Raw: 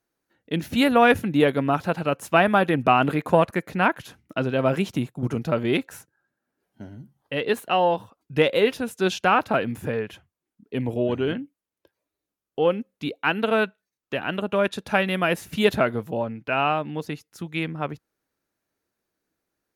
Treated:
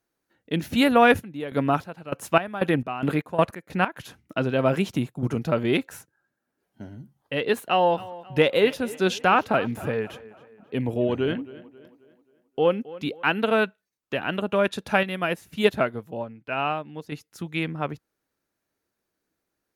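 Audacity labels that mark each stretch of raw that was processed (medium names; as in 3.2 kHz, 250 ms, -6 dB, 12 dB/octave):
1.190000	3.950000	square tremolo 1.3 Hz -> 3.7 Hz
7.600000	13.230000	tape echo 267 ms, feedback 47%, level -17.5 dB, low-pass 3.7 kHz
15.030000	17.120000	upward expansion, over -33 dBFS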